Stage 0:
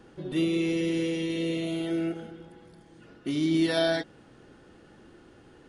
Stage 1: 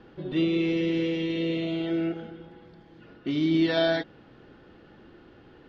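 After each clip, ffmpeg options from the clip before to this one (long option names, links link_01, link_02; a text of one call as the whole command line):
ffmpeg -i in.wav -af "lowpass=frequency=4400:width=0.5412,lowpass=frequency=4400:width=1.3066,volume=1.5dB" out.wav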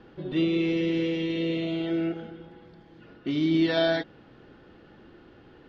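ffmpeg -i in.wav -af anull out.wav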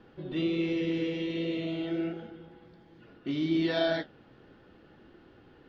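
ffmpeg -i in.wav -af "flanger=delay=8.7:depth=8.7:regen=-57:speed=1.3:shape=triangular" out.wav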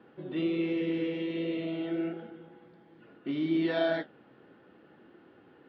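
ffmpeg -i in.wav -af "highpass=170,lowpass=2800" out.wav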